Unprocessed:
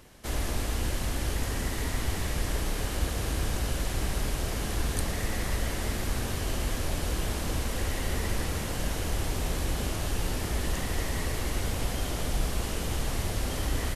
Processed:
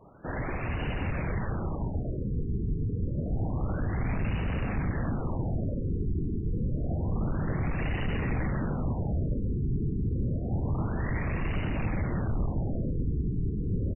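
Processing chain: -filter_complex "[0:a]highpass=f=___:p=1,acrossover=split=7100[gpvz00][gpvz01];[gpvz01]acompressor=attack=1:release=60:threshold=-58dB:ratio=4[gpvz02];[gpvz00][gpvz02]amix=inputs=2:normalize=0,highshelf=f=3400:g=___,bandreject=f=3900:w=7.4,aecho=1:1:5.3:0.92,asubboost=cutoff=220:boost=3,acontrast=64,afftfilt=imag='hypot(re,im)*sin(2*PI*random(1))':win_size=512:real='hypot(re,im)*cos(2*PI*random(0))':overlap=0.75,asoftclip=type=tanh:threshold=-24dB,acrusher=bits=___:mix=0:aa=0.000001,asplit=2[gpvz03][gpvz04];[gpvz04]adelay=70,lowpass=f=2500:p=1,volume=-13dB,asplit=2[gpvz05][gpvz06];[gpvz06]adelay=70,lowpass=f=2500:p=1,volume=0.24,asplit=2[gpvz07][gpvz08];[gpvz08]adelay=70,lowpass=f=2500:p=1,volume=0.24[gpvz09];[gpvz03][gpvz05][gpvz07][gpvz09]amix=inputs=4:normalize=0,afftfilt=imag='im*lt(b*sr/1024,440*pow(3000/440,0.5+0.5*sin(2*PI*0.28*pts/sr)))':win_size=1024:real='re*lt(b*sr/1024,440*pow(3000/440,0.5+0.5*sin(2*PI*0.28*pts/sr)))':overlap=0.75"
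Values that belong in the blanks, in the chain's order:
77, 6, 10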